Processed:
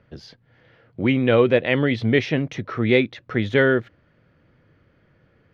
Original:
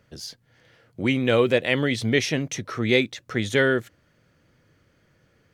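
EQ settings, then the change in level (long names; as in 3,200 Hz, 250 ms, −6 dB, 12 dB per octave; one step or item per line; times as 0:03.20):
high-frequency loss of the air 300 metres
+4.0 dB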